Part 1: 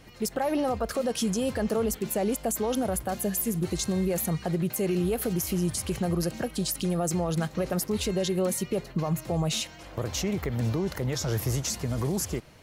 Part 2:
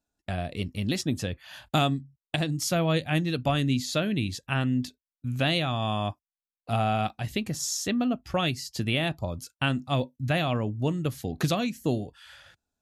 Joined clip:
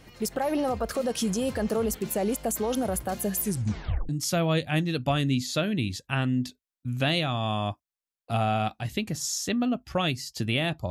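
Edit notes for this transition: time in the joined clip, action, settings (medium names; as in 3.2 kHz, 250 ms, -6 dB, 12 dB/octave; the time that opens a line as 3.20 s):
part 1
3.42 s: tape stop 0.67 s
4.09 s: go over to part 2 from 2.48 s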